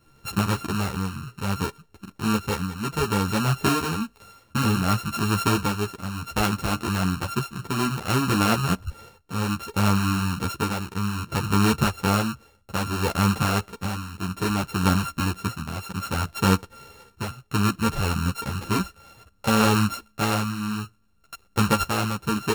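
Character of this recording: a buzz of ramps at a fixed pitch in blocks of 32 samples; tremolo triangle 0.62 Hz, depth 65%; a shimmering, thickened sound

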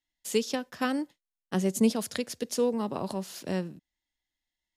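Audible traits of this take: noise floor -90 dBFS; spectral tilt -4.5 dB/octave

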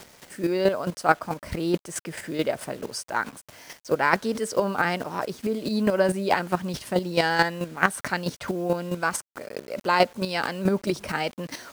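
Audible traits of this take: a quantiser's noise floor 8-bit, dither none; chopped level 4.6 Hz, depth 60%, duty 15%

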